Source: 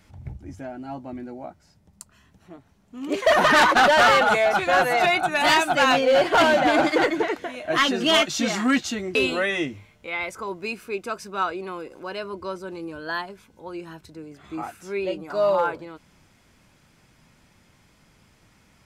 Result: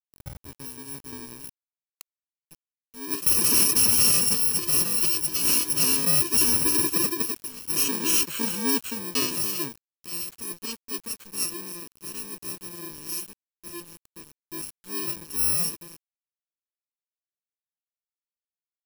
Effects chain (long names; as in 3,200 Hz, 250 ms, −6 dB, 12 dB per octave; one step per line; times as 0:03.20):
samples in bit-reversed order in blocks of 64 samples
centre clipping without the shift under −36 dBFS
level −3.5 dB